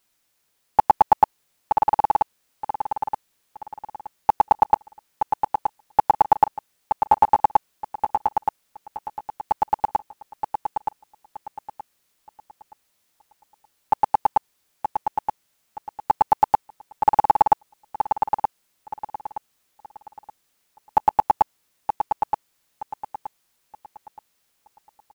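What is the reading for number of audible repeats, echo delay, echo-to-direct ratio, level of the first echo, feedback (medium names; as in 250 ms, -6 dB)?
3, 923 ms, -5.5 dB, -6.0 dB, 29%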